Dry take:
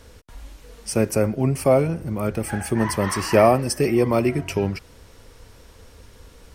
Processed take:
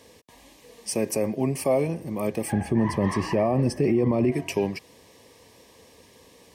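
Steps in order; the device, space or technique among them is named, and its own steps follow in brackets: 2.52–4.32 s: RIAA curve playback; PA system with an anti-feedback notch (high-pass 180 Hz 12 dB/octave; Butterworth band-stop 1.4 kHz, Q 3.2; peak limiter -12.5 dBFS, peak gain reduction 11 dB); trim -1 dB

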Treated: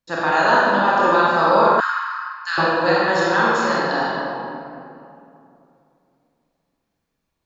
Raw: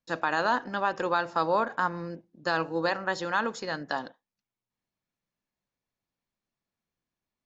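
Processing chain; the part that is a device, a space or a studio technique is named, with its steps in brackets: tunnel (flutter echo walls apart 7.6 m, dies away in 0.45 s; reverberation RT60 2.7 s, pre-delay 27 ms, DRR -5.5 dB); 1.80–2.58 s: steep high-pass 1.2 kHz 36 dB/octave; trim +4 dB

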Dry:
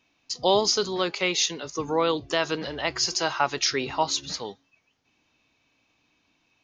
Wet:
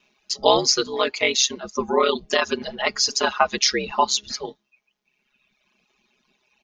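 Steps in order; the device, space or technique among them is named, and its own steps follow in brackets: ring-modulated robot voice (ring modulator 66 Hz; comb 4.8 ms, depth 61%); reverb removal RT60 1.5 s; bass shelf 160 Hz -5 dB; trim +7 dB

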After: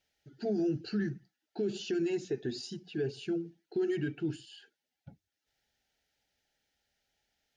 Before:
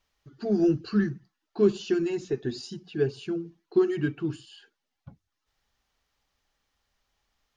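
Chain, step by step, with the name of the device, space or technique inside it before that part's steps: PA system with an anti-feedback notch (high-pass 120 Hz 6 dB/octave; Butterworth band-stop 1.1 kHz, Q 2.1; peak limiter -22.5 dBFS, peak gain reduction 11 dB); trim -2 dB

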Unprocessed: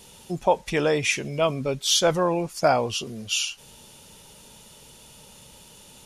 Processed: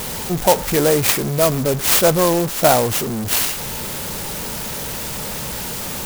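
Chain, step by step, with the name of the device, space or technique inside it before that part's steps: early CD player with a faulty converter (jump at every zero crossing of -26 dBFS; sampling jitter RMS 0.1 ms); trim +5 dB

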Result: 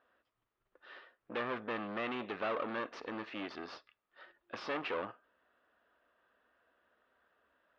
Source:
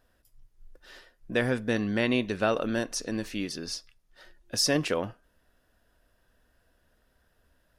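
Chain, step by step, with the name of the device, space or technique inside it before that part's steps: guitar amplifier (valve stage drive 34 dB, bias 0.75; tone controls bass -13 dB, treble -8 dB; cabinet simulation 93–3700 Hz, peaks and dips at 96 Hz -6 dB, 150 Hz -7 dB, 1.2 kHz +8 dB); trim +2 dB

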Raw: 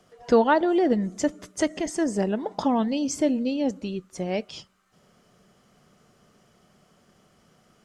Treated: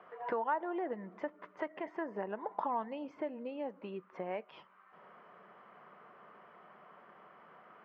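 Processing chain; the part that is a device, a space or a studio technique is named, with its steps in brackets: frequency weighting A; bass amplifier (compression 3:1, threshold -46 dBFS, peak gain reduction 22 dB; cabinet simulation 72–2100 Hz, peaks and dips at 120 Hz -7 dB, 260 Hz -5 dB, 1 kHz +9 dB); trim +5.5 dB

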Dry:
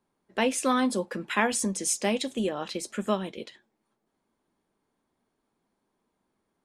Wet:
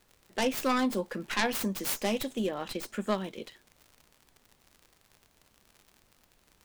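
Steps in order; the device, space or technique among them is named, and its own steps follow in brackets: record under a worn stylus (tracing distortion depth 0.48 ms; crackle 78 per s -40 dBFS; pink noise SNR 33 dB); trim -2.5 dB

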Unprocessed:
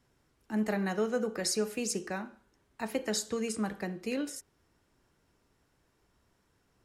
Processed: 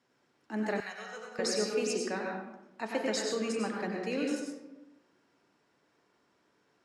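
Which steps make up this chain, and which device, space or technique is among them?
supermarket ceiling speaker (band-pass 250–6200 Hz; reverberation RT60 1.0 s, pre-delay 89 ms, DRR -0.5 dB); 0.80–1.39 s: amplifier tone stack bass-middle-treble 10-0-10

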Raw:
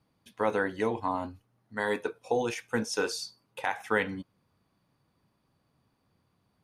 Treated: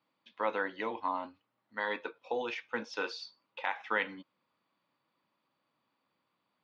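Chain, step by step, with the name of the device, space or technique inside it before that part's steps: low-pass 7.2 kHz; phone earpiece (cabinet simulation 410–4100 Hz, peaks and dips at 420 Hz -9 dB, 720 Hz -7 dB, 1.6 kHz -4 dB)

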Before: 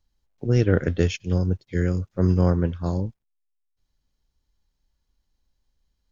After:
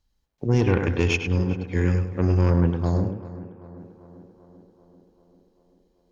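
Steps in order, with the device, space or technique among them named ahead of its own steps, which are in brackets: rockabilly slapback (valve stage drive 15 dB, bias 0.4; tape echo 103 ms, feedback 31%, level -3.5 dB, low-pass 2.1 kHz); 0.64–2.50 s: graphic EQ with 31 bands 160 Hz -6 dB, 630 Hz -6 dB, 2.5 kHz +10 dB; tape echo 391 ms, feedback 74%, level -14 dB, low-pass 1.8 kHz; trim +2.5 dB

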